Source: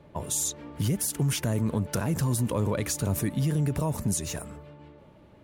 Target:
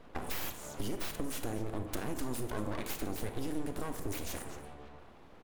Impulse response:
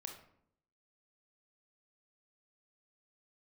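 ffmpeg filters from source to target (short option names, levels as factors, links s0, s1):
-filter_complex "[0:a]aecho=1:1:231:0.106,aeval=exprs='abs(val(0))':c=same,acompressor=threshold=0.0178:ratio=2.5,asplit=2[s0][s1];[1:a]atrim=start_sample=2205,asetrate=34839,aresample=44100[s2];[s1][s2]afir=irnorm=-1:irlink=0,volume=2[s3];[s0][s3]amix=inputs=2:normalize=0,volume=0.473"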